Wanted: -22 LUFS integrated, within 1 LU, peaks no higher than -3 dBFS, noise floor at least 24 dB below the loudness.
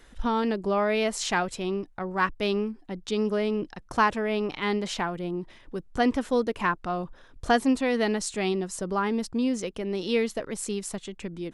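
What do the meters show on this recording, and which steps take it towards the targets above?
loudness -27.5 LUFS; peak -10.5 dBFS; loudness target -22.0 LUFS
-> gain +5.5 dB

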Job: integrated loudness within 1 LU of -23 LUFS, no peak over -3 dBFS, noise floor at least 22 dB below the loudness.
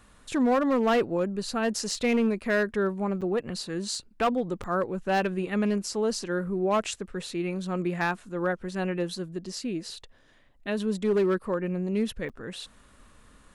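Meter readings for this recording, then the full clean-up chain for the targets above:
clipped 0.9%; flat tops at -18.5 dBFS; dropouts 3; longest dropout 6.8 ms; loudness -28.0 LUFS; peak -18.5 dBFS; loudness target -23.0 LUFS
-> clip repair -18.5 dBFS; interpolate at 3.21/4.63/12.29, 6.8 ms; gain +5 dB

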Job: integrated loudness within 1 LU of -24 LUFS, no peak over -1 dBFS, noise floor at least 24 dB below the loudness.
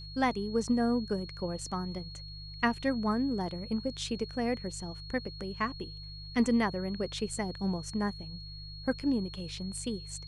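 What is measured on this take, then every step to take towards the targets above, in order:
hum 50 Hz; harmonics up to 150 Hz; hum level -44 dBFS; steady tone 4300 Hz; tone level -46 dBFS; loudness -33.0 LUFS; peak -14.0 dBFS; loudness target -24.0 LUFS
-> de-hum 50 Hz, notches 3; notch 4300 Hz, Q 30; gain +9 dB

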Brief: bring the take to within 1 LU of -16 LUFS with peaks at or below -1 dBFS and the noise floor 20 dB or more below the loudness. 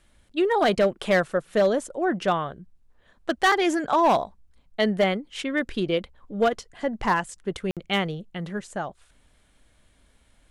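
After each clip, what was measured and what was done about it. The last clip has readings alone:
clipped 0.8%; flat tops at -14.0 dBFS; dropouts 1; longest dropout 57 ms; loudness -25.0 LUFS; peak -14.0 dBFS; loudness target -16.0 LUFS
-> clip repair -14 dBFS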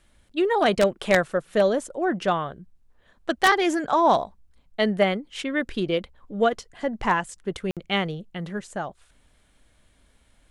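clipped 0.0%; dropouts 1; longest dropout 57 ms
-> interpolate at 7.71, 57 ms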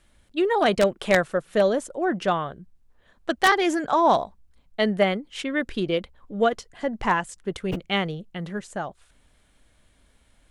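dropouts 0; loudness -24.5 LUFS; peak -5.0 dBFS; loudness target -16.0 LUFS
-> gain +8.5 dB; limiter -1 dBFS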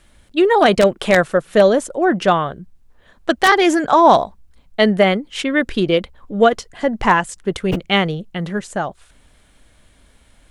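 loudness -16.5 LUFS; peak -1.0 dBFS; noise floor -53 dBFS

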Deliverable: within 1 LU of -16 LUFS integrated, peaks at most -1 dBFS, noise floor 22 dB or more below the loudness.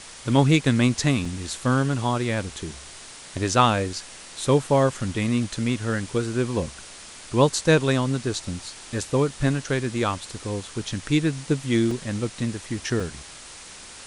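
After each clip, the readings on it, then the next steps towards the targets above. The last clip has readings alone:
dropouts 3; longest dropout 3.4 ms; noise floor -43 dBFS; noise floor target -46 dBFS; loudness -24.0 LUFS; peak -5.0 dBFS; loudness target -16.0 LUFS
-> interpolate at 1.25/11.91/13, 3.4 ms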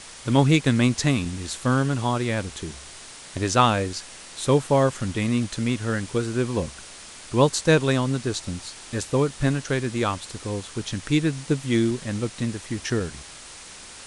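dropouts 0; noise floor -43 dBFS; noise floor target -46 dBFS
-> denoiser 6 dB, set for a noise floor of -43 dBFS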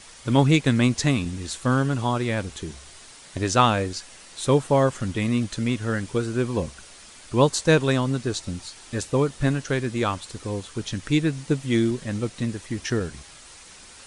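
noise floor -47 dBFS; loudness -24.0 LUFS; peak -5.0 dBFS; loudness target -16.0 LUFS
-> gain +8 dB; limiter -1 dBFS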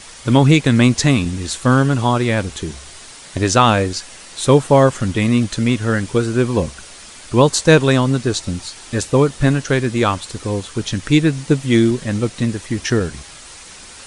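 loudness -16.5 LUFS; peak -1.0 dBFS; noise floor -39 dBFS

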